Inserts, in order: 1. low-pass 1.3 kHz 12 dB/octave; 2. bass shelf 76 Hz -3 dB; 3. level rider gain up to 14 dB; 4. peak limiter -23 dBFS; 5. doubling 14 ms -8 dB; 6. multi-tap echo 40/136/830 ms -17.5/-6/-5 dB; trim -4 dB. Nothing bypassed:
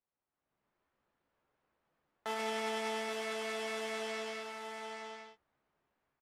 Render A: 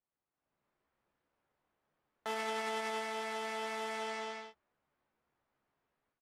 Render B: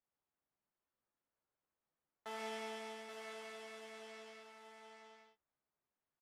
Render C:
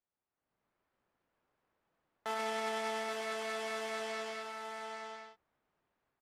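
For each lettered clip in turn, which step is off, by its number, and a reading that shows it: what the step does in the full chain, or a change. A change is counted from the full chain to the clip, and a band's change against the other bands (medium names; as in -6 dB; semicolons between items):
6, echo-to-direct -2.5 dB to none; 3, loudness change -10.5 LU; 5, 250 Hz band -2.5 dB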